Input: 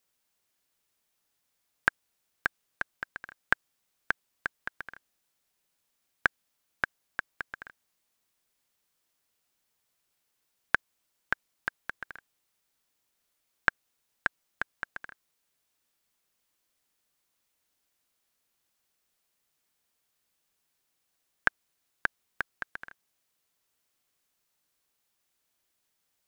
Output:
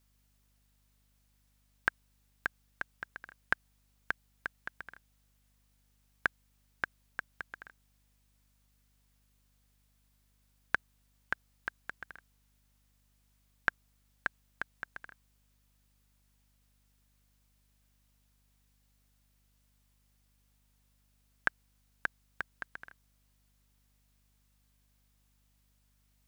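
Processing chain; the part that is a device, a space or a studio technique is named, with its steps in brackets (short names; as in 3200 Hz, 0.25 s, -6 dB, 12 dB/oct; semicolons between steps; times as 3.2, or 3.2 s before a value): video cassette with head-switching buzz (buzz 50 Hz, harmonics 5, -67 dBFS -7 dB/oct; white noise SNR 32 dB); gain -5 dB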